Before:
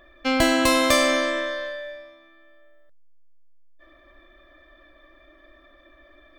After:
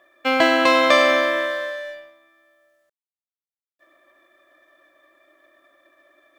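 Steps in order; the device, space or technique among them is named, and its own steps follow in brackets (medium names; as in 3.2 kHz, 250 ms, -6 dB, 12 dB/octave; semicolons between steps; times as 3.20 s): phone line with mismatched companding (band-pass 390–3200 Hz; companding laws mixed up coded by A); trim +6 dB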